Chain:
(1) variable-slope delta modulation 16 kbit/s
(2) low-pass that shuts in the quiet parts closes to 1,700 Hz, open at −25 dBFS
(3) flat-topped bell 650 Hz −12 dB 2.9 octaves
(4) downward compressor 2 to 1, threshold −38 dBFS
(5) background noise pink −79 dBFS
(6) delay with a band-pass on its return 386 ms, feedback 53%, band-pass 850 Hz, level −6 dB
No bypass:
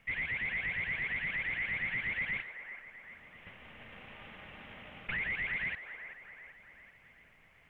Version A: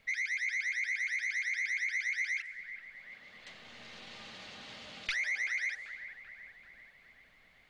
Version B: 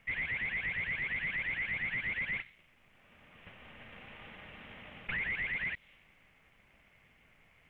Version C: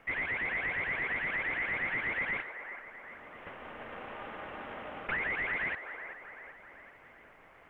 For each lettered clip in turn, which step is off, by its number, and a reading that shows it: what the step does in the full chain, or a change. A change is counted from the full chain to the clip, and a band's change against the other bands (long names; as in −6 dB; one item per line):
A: 1, 125 Hz band −10.0 dB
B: 6, echo-to-direct ratio −7.0 dB to none audible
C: 3, 500 Hz band +9.0 dB